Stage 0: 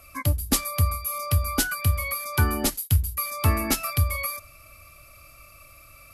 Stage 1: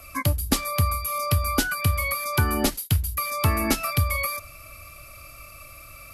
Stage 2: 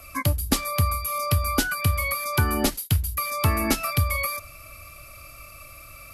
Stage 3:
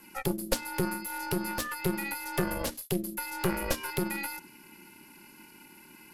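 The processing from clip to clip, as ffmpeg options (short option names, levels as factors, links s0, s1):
-filter_complex "[0:a]acrossover=split=600|5500[s0][s1][s2];[s0]acompressor=threshold=0.0562:ratio=4[s3];[s1]acompressor=threshold=0.0282:ratio=4[s4];[s2]acompressor=threshold=0.0178:ratio=4[s5];[s3][s4][s5]amix=inputs=3:normalize=0,volume=1.88"
-af anull
-af "aeval=exprs='val(0)*sin(2*PI*270*n/s)':c=same,aeval=exprs='0.422*(cos(1*acos(clip(val(0)/0.422,-1,1)))-cos(1*PI/2))+0.075*(cos(4*acos(clip(val(0)/0.422,-1,1)))-cos(4*PI/2))':c=same,volume=0.501"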